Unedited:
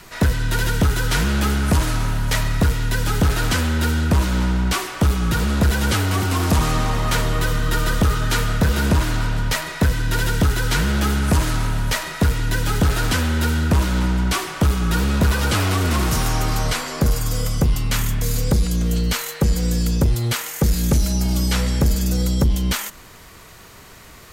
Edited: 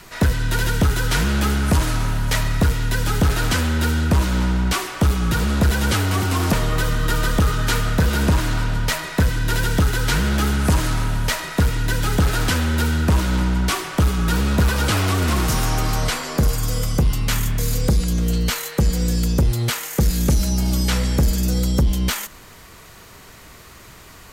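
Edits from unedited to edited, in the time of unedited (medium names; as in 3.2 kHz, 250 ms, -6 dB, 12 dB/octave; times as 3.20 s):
6.53–7.16 s: delete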